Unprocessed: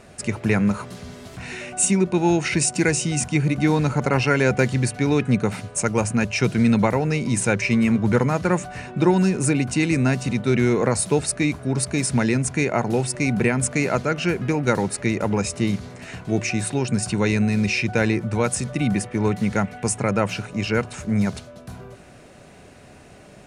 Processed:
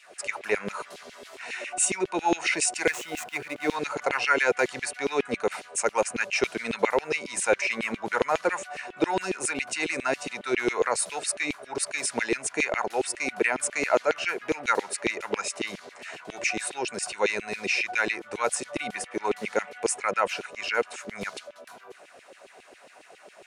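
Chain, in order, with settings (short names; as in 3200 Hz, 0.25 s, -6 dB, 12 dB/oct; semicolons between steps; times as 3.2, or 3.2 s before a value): 2.87–3.76 median filter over 9 samples; LFO high-pass saw down 7.3 Hz 360–3100 Hz; gain -4 dB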